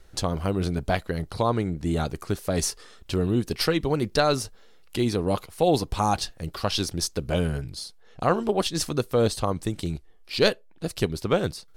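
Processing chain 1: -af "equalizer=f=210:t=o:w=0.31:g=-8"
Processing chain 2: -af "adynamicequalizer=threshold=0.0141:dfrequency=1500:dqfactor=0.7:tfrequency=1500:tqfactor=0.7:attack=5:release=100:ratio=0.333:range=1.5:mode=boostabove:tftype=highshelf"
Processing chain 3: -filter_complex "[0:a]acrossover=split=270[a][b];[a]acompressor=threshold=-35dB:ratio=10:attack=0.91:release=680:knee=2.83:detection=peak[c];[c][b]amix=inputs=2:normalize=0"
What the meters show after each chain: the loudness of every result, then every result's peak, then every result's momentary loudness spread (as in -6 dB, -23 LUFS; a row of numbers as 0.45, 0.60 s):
-27.0, -25.5, -28.0 LUFS; -7.5, -6.0, -6.0 dBFS; 10, 10, 12 LU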